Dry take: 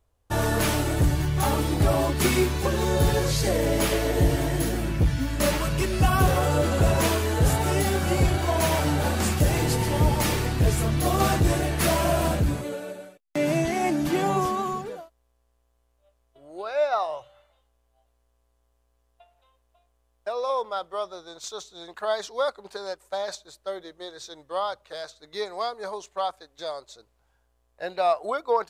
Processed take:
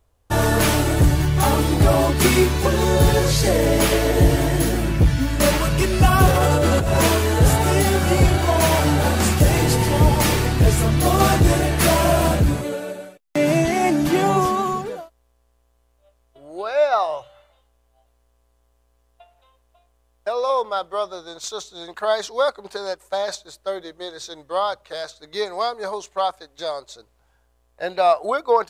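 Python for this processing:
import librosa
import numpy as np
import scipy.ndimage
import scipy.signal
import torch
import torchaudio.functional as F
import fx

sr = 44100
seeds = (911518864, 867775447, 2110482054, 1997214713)

y = fx.over_compress(x, sr, threshold_db=-23.0, ratio=-1.0, at=(6.31, 7.0))
y = F.gain(torch.from_numpy(y), 6.0).numpy()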